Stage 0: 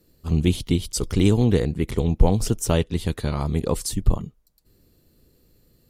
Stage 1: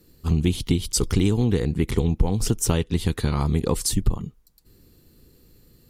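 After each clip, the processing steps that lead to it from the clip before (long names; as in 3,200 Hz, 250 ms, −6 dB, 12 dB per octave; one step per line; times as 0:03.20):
parametric band 610 Hz −8 dB 0.35 octaves
downward compressor 4 to 1, threshold −22 dBFS, peak gain reduction 11.5 dB
level +5 dB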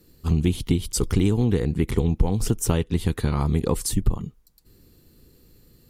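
dynamic equaliser 4,900 Hz, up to −5 dB, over −43 dBFS, Q 0.77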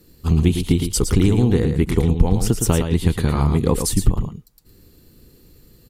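single-tap delay 112 ms −7 dB
level +4 dB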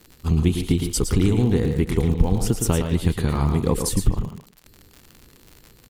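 surface crackle 80 per second −29 dBFS
far-end echo of a speakerphone 150 ms, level −10 dB
level −3 dB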